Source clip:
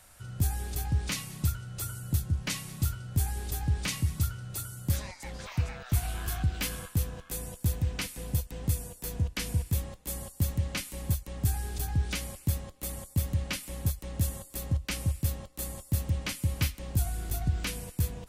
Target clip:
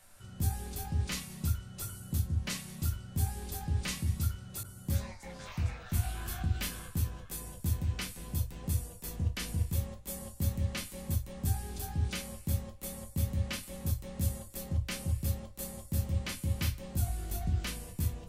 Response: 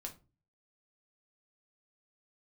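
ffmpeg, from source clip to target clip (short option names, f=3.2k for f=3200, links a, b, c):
-filter_complex "[0:a]bandreject=f=60:t=h:w=6,bandreject=f=120:t=h:w=6[a];[1:a]atrim=start_sample=2205,atrim=end_sample=3087[b];[a][b]afir=irnorm=-1:irlink=0,asettb=1/sr,asplit=3[c][d][e];[c]atrim=end=4.634[f];[d]atrim=start=4.63:end=5.3,asetpts=PTS-STARTPTS,afade=t=in:d=0.004:c=qsin,afade=t=out:st=0.666:d=0.004:c=qsin,adynamicequalizer=threshold=0.001:dfrequency=1900:dqfactor=0.7:tfrequency=1900:tqfactor=0.7:attack=5:release=100:ratio=0.375:range=3:mode=cutabove:tftype=highshelf[g];[e]atrim=start=5.296[h];[f][g]acrossfade=d=0.004:c1=hsin:c2=qsin[i];[i][h]acrossfade=d=0.004:c1=qsin:c2=hsin"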